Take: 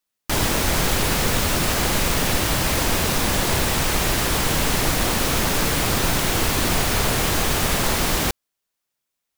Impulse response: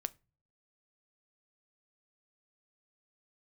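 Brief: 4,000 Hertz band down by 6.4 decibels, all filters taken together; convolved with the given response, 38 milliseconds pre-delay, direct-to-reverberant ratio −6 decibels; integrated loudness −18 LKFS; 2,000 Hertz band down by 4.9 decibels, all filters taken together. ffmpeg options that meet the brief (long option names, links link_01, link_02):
-filter_complex "[0:a]equalizer=frequency=2000:width_type=o:gain=-4.5,equalizer=frequency=4000:width_type=o:gain=-7,asplit=2[link_01][link_02];[1:a]atrim=start_sample=2205,adelay=38[link_03];[link_02][link_03]afir=irnorm=-1:irlink=0,volume=7dB[link_04];[link_01][link_04]amix=inputs=2:normalize=0,volume=-3dB"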